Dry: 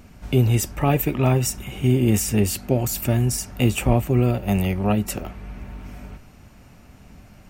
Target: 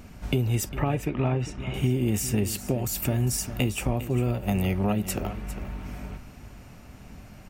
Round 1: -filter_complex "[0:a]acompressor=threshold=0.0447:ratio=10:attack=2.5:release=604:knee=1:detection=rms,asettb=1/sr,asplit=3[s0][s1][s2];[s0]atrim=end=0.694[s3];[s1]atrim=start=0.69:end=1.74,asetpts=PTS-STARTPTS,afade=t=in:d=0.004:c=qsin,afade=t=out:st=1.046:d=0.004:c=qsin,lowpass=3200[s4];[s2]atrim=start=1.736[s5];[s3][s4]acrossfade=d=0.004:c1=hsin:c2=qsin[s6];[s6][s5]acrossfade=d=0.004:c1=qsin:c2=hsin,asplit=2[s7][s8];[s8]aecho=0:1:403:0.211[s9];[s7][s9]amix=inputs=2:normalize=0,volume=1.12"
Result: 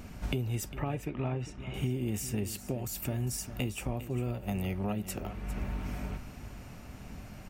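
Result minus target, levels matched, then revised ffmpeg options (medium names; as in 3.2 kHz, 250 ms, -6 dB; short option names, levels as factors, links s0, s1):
compression: peak gain reduction +8 dB
-filter_complex "[0:a]acompressor=threshold=0.126:ratio=10:attack=2.5:release=604:knee=1:detection=rms,asettb=1/sr,asplit=3[s0][s1][s2];[s0]atrim=end=0.694[s3];[s1]atrim=start=0.69:end=1.74,asetpts=PTS-STARTPTS,afade=t=in:d=0.004:c=qsin,afade=t=out:st=1.046:d=0.004:c=qsin,lowpass=3200[s4];[s2]atrim=start=1.736[s5];[s3][s4]acrossfade=d=0.004:c1=hsin:c2=qsin[s6];[s6][s5]acrossfade=d=0.004:c1=qsin:c2=hsin,asplit=2[s7][s8];[s8]aecho=0:1:403:0.211[s9];[s7][s9]amix=inputs=2:normalize=0,volume=1.12"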